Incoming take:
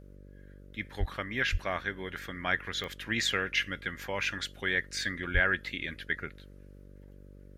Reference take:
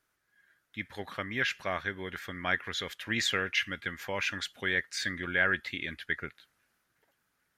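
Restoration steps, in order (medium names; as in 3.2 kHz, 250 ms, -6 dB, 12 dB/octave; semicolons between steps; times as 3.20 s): de-click; de-hum 48.3 Hz, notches 12; 0.99–1.11 s: high-pass 140 Hz 24 dB/octave; 1.51–1.63 s: high-pass 140 Hz 24 dB/octave; 5.33–5.45 s: high-pass 140 Hz 24 dB/octave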